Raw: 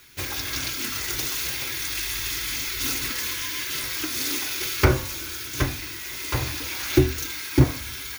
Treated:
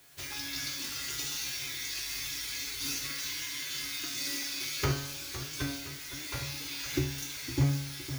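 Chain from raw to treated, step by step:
spectral magnitudes quantised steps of 15 dB
in parallel at −9 dB: bit-depth reduction 6 bits, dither triangular
on the sum: dynamic equaliser 4,900 Hz, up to +6 dB, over −42 dBFS, Q 0.71
tuned comb filter 140 Hz, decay 0.77 s, harmonics all, mix 90%
feedback echo with a swinging delay time 511 ms, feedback 47%, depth 156 cents, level −12.5 dB

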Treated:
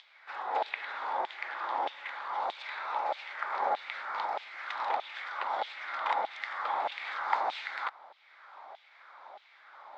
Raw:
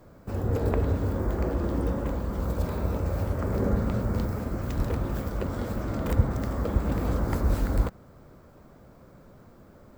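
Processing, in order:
upward compression, threshold −42 dBFS
auto-filter high-pass saw down 1.6 Hz 660–3,200 Hz
loudspeaker in its box 410–4,400 Hz, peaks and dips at 480 Hz −5 dB, 830 Hz +10 dB, 2,100 Hz +7 dB, 3,600 Hz +8 dB

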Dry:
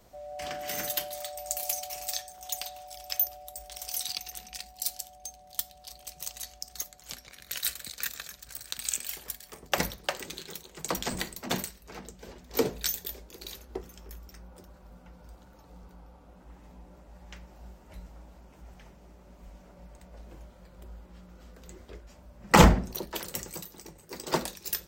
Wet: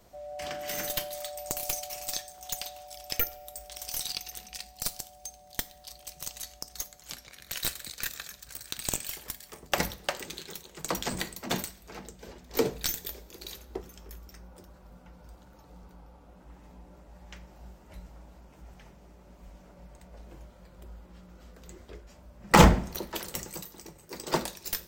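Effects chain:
stylus tracing distortion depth 0.04 ms
coupled-rooms reverb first 0.49 s, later 3.3 s, from −19 dB, DRR 16 dB

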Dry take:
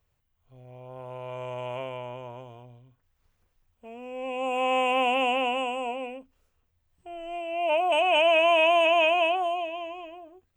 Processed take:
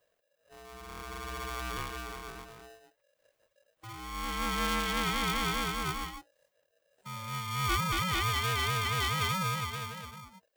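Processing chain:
speech leveller within 4 dB 0.5 s
reverb reduction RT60 0.55 s
ring modulator with a square carrier 560 Hz
level −5 dB

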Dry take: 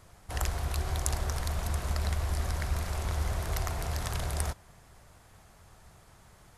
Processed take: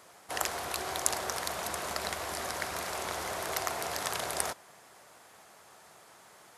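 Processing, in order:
high-pass filter 350 Hz 12 dB per octave
level +4.5 dB

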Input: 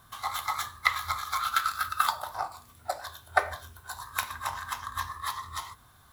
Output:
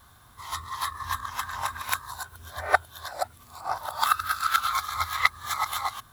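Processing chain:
played backwards from end to start
level +3 dB

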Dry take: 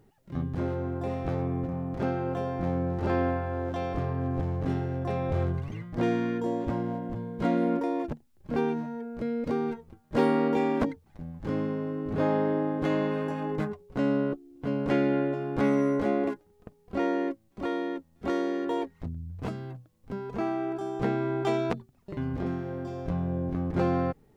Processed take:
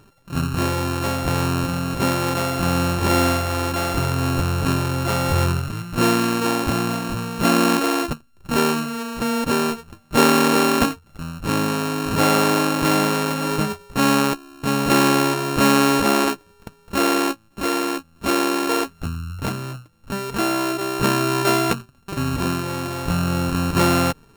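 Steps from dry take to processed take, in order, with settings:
samples sorted by size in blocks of 32 samples
level +8.5 dB

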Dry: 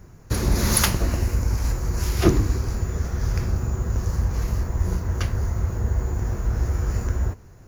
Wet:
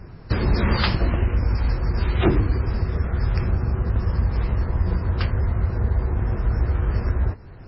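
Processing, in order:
in parallel at +1 dB: downward compressor 6 to 1, threshold −31 dBFS, peak gain reduction 18.5 dB
on the sum: hard clipping −11.5 dBFS, distortion −21 dB
MP3 16 kbit/s 16,000 Hz

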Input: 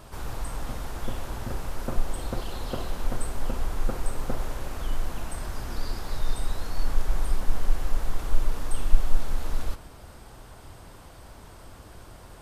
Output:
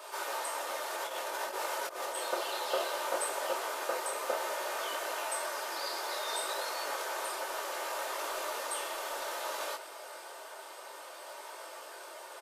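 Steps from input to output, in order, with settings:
elliptic high-pass filter 430 Hz, stop band 70 dB
comb filter 3.3 ms, depth 52%
0:00.90–0:02.15: compressor whose output falls as the input rises −42 dBFS, ratio −0.5
micro pitch shift up and down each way 21 cents
level +8.5 dB

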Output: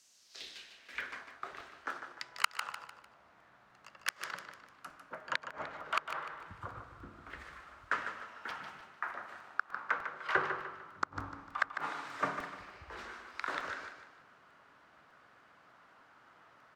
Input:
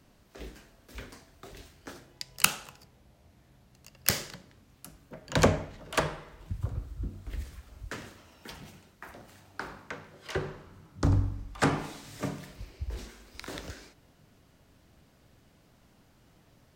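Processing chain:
band-pass filter sweep 6,700 Hz → 1,300 Hz, 0:00.11–0:01.22
gate with flip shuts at −26 dBFS, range −33 dB
on a send: repeating echo 150 ms, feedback 39%, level −8.5 dB
on the sum: regular buffer underruns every 0.30 s, samples 128, repeat, from 0:00.40
level +12 dB

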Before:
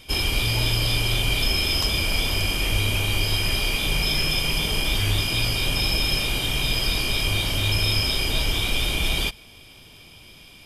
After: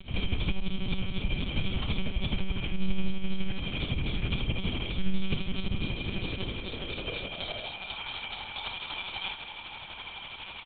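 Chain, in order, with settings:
low-shelf EQ 280 Hz +10.5 dB
brickwall limiter −13 dBFS, peak gain reduction 10 dB
reversed playback
downward compressor 5 to 1, threshold −33 dBFS, peak gain reduction 14.5 dB
reversed playback
high-pass filter sweep 88 Hz → 880 Hz, 0:05.39–0:07.96
amplitude tremolo 12 Hz, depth 89%
ambience of single reflections 39 ms −6.5 dB, 59 ms −7 dB
one-pitch LPC vocoder at 8 kHz 190 Hz
level +8.5 dB

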